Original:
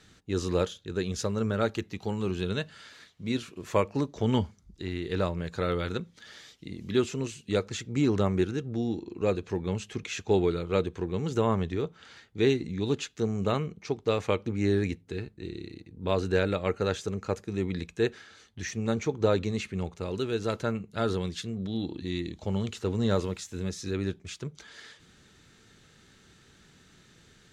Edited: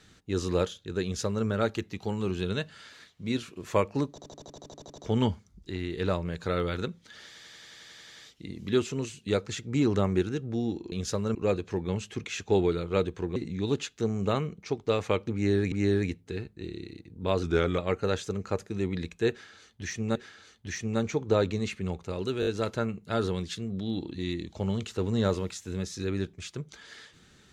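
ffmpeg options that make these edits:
ffmpeg -i in.wav -filter_complex "[0:a]asplit=32[link_01][link_02][link_03][link_04][link_05][link_06][link_07][link_08][link_09][link_10][link_11][link_12][link_13][link_14][link_15][link_16][link_17][link_18][link_19][link_20][link_21][link_22][link_23][link_24][link_25][link_26][link_27][link_28][link_29][link_30][link_31][link_32];[link_01]atrim=end=4.182[link_33];[link_02]atrim=start=4.098:end=4.182[link_34];[link_03]atrim=start=4.098:end=4.182[link_35];[link_04]atrim=start=4.098:end=4.182[link_36];[link_05]atrim=start=4.098:end=4.182[link_37];[link_06]atrim=start=4.098:end=4.182[link_38];[link_07]atrim=start=4.098:end=4.182[link_39];[link_08]atrim=start=4.098:end=4.182[link_40];[link_09]atrim=start=4.098:end=4.182[link_41];[link_10]atrim=start=4.098:end=4.182[link_42];[link_11]atrim=start=4.098:end=4.182[link_43];[link_12]atrim=start=4.098:end=6.472[link_44];[link_13]atrim=start=6.378:end=6.472[link_45];[link_14]atrim=start=6.378:end=6.472[link_46];[link_15]atrim=start=6.378:end=6.472[link_47];[link_16]atrim=start=6.378:end=6.472[link_48];[link_17]atrim=start=6.378:end=6.472[link_49];[link_18]atrim=start=6.378:end=6.472[link_50];[link_19]atrim=start=6.378:end=6.472[link_51];[link_20]atrim=start=6.378:end=6.472[link_52];[link_21]atrim=start=6.378:end=6.472[link_53];[link_22]atrim=start=6.378:end=9.142[link_54];[link_23]atrim=start=1.028:end=1.462[link_55];[link_24]atrim=start=9.138:end=11.152[link_56];[link_25]atrim=start=12.548:end=14.912[link_57];[link_26]atrim=start=14.528:end=16.244[link_58];[link_27]atrim=start=16.24:end=16.56,asetpts=PTS-STARTPTS,asetrate=39690,aresample=44100[link_59];[link_28]atrim=start=16.556:end=18.932[link_60];[link_29]atrim=start=18.078:end=20.352[link_61];[link_30]atrim=start=20.328:end=20.352[link_62];[link_31]atrim=start=20.328:end=20.352[link_63];[link_32]atrim=start=20.328[link_64];[link_33][link_34]acrossfade=duration=0.004:curve1=hsin:curve2=hsin[link_65];[link_65][link_35]acrossfade=duration=0.004:curve1=hsin:curve2=hsin[link_66];[link_66][link_36]acrossfade=duration=0.004:curve1=hsin:curve2=hsin[link_67];[link_67][link_37]acrossfade=duration=0.004:curve1=hsin:curve2=hsin[link_68];[link_68][link_38]acrossfade=duration=0.004:curve1=hsin:curve2=hsin[link_69];[link_69][link_39]acrossfade=duration=0.004:curve1=hsin:curve2=hsin[link_70];[link_70][link_40]acrossfade=duration=0.004:curve1=hsin:curve2=hsin[link_71];[link_71][link_41]acrossfade=duration=0.004:curve1=hsin:curve2=hsin[link_72];[link_72][link_42]acrossfade=duration=0.004:curve1=hsin:curve2=hsin[link_73];[link_73][link_43]acrossfade=duration=0.004:curve1=hsin:curve2=hsin[link_74];[link_74][link_44]acrossfade=duration=0.004:curve1=hsin:curve2=hsin[link_75];[link_75][link_45]acrossfade=duration=0.004:curve1=hsin:curve2=hsin[link_76];[link_76][link_46]acrossfade=duration=0.004:curve1=hsin:curve2=hsin[link_77];[link_77][link_47]acrossfade=duration=0.004:curve1=hsin:curve2=hsin[link_78];[link_78][link_48]acrossfade=duration=0.004:curve1=hsin:curve2=hsin[link_79];[link_79][link_49]acrossfade=duration=0.004:curve1=hsin:curve2=hsin[link_80];[link_80][link_50]acrossfade=duration=0.004:curve1=hsin:curve2=hsin[link_81];[link_81][link_51]acrossfade=duration=0.004:curve1=hsin:curve2=hsin[link_82];[link_82][link_52]acrossfade=duration=0.004:curve1=hsin:curve2=hsin[link_83];[link_83][link_53]acrossfade=duration=0.004:curve1=hsin:curve2=hsin[link_84];[link_84][link_54]acrossfade=duration=0.004:curve1=hsin:curve2=hsin[link_85];[link_85][link_55]acrossfade=duration=0.004:curve1=hsin:curve2=hsin[link_86];[link_86][link_56]acrossfade=duration=0.004:curve1=hsin:curve2=hsin[link_87];[link_87][link_57]acrossfade=duration=0.004:curve1=hsin:curve2=hsin[link_88];[link_88][link_58]acrossfade=duration=0.004:curve1=hsin:curve2=hsin[link_89];[link_89][link_59]acrossfade=duration=0.004:curve1=hsin:curve2=hsin[link_90];[link_90][link_60]acrossfade=duration=0.004:curve1=hsin:curve2=hsin[link_91];[link_91][link_61]acrossfade=duration=0.004:curve1=hsin:curve2=hsin[link_92];[link_92][link_62]acrossfade=duration=0.004:curve1=hsin:curve2=hsin[link_93];[link_93][link_63]acrossfade=duration=0.004:curve1=hsin:curve2=hsin[link_94];[link_94][link_64]acrossfade=duration=0.004:curve1=hsin:curve2=hsin" out.wav

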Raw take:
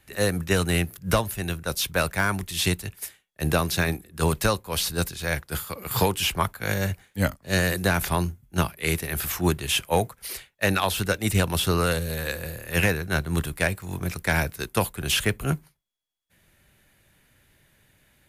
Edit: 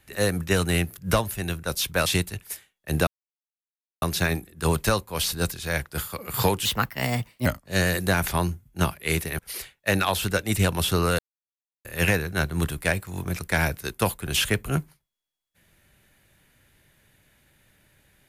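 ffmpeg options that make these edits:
ffmpeg -i in.wav -filter_complex "[0:a]asplit=8[link_01][link_02][link_03][link_04][link_05][link_06][link_07][link_08];[link_01]atrim=end=2.062[link_09];[link_02]atrim=start=2.578:end=3.59,asetpts=PTS-STARTPTS,afade=type=out:start_time=1.008:duration=0.004:curve=hsin,apad=pad_dur=0.95[link_10];[link_03]atrim=start=3.59:end=6.224,asetpts=PTS-STARTPTS,afade=type=in:duration=0.004:curve=hsin[link_11];[link_04]atrim=start=6.22:end=7.23,asetpts=PTS-STARTPTS,asetrate=55125,aresample=44100[link_12];[link_05]atrim=start=7.226:end=9.162[link_13];[link_06]atrim=start=10.138:end=11.94,asetpts=PTS-STARTPTS,afade=type=out:start_time=1.798:duration=0.004:curve=hsin[link_14];[link_07]atrim=start=11.94:end=12.6,asetpts=PTS-STARTPTS,volume=0[link_15];[link_08]atrim=start=12.6,asetpts=PTS-STARTPTS,afade=type=in:duration=0.004:curve=hsin[link_16];[link_10][link_11]concat=n=2:v=0:a=1[link_17];[link_09][link_17]acrossfade=duration=0.004:curve1=hsin:curve2=hsin[link_18];[link_18][link_12]acrossfade=duration=0.004:curve1=hsin:curve2=hsin[link_19];[link_19][link_13]acrossfade=duration=0.004:curve1=hsin:curve2=hsin[link_20];[link_14][link_15][link_16]concat=n=3:v=0:a=1[link_21];[link_20][link_21]acrossfade=duration=0.004:curve1=hsin:curve2=hsin" out.wav

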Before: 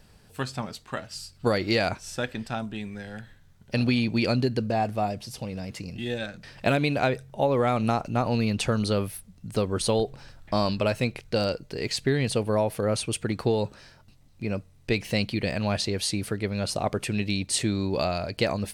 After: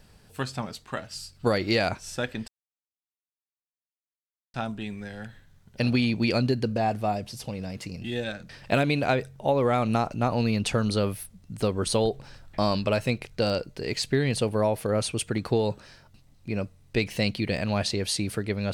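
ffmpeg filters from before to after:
ffmpeg -i in.wav -filter_complex "[0:a]asplit=2[link_01][link_02];[link_01]atrim=end=2.48,asetpts=PTS-STARTPTS,afade=type=out:start_time=2.476:duration=0.004:curve=hsin,apad=pad_dur=2.06[link_03];[link_02]atrim=start=2.48,asetpts=PTS-STARTPTS,afade=type=in:duration=0.004:curve=hsin[link_04];[link_03][link_04]concat=n=2:v=0:a=1" out.wav

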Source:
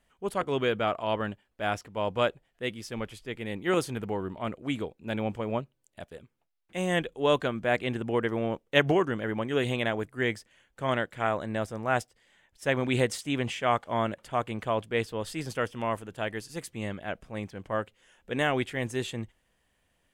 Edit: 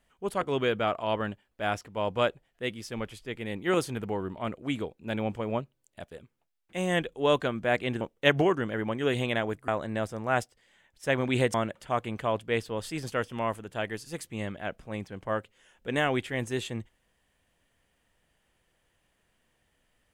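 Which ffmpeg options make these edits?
ffmpeg -i in.wav -filter_complex "[0:a]asplit=4[link_01][link_02][link_03][link_04];[link_01]atrim=end=8.012[link_05];[link_02]atrim=start=8.508:end=10.182[link_06];[link_03]atrim=start=11.268:end=13.132[link_07];[link_04]atrim=start=13.968[link_08];[link_05][link_06]acrossfade=duration=0.004:curve1=hsin:curve2=hsin[link_09];[link_09][link_07]acrossfade=duration=0.004:curve1=hsin:curve2=hsin[link_10];[link_10][link_08]acrossfade=duration=0.004:curve1=hsin:curve2=hsin" out.wav

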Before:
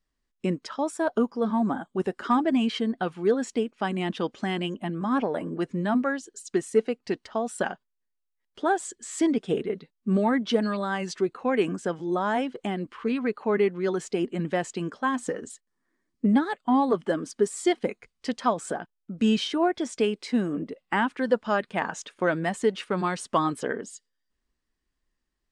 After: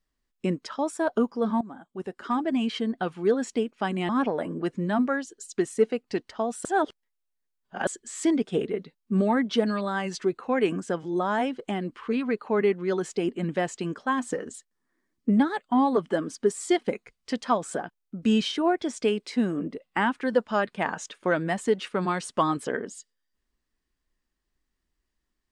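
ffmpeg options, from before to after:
ffmpeg -i in.wav -filter_complex "[0:a]asplit=5[link_01][link_02][link_03][link_04][link_05];[link_01]atrim=end=1.61,asetpts=PTS-STARTPTS,afade=type=out:start_time=1.606:duration=0.004:curve=hsin:silence=0.11885[link_06];[link_02]atrim=start=1.61:end=4.092,asetpts=PTS-STARTPTS,afade=type=in:duration=1.88:curve=qsin:silence=0.11885[link_07];[link_03]atrim=start=5.048:end=7.612[link_08];[link_04]atrim=start=7.608:end=8.832,asetpts=PTS-STARTPTS,areverse[link_09];[link_05]atrim=start=8.828[link_10];[link_06][link_07]concat=n=2:v=0:a=1[link_11];[link_11][link_08]acrossfade=duration=0.004:curve1=hsin:curve2=hsin[link_12];[link_12][link_09]acrossfade=duration=0.004:curve1=hsin:curve2=hsin[link_13];[link_13][link_10]acrossfade=duration=0.004:curve1=hsin:curve2=hsin" out.wav

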